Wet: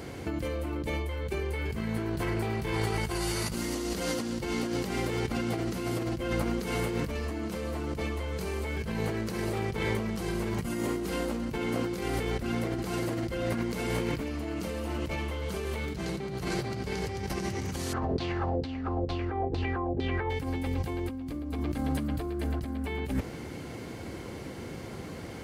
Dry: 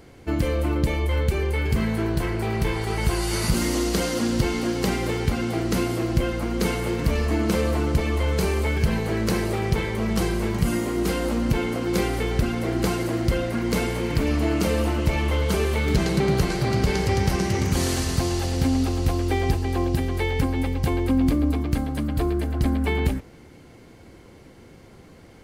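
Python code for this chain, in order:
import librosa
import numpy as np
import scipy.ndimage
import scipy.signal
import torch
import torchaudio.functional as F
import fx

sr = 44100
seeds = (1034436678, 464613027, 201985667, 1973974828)

y = scipy.signal.sosfilt(scipy.signal.butter(2, 62.0, 'highpass', fs=sr, output='sos'), x)
y = fx.over_compress(y, sr, threshold_db=-32.0, ratio=-1.0)
y = fx.filter_lfo_lowpass(y, sr, shape='saw_down', hz=2.2, low_hz=410.0, high_hz=4300.0, q=4.1, at=(17.92, 20.29), fade=0.02)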